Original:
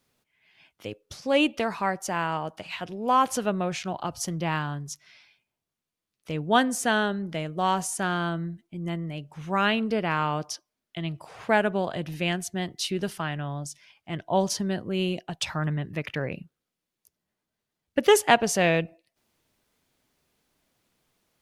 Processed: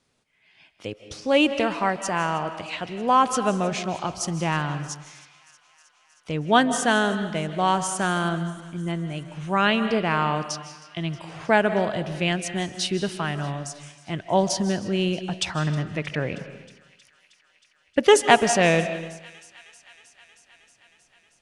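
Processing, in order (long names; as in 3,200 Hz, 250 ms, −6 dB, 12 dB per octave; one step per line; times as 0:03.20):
Butterworth low-pass 10,000 Hz 48 dB per octave
delay with a high-pass on its return 315 ms, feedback 76%, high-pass 1,800 Hz, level −21 dB
convolution reverb RT60 1.0 s, pre-delay 115 ms, DRR 10.5 dB
level +3 dB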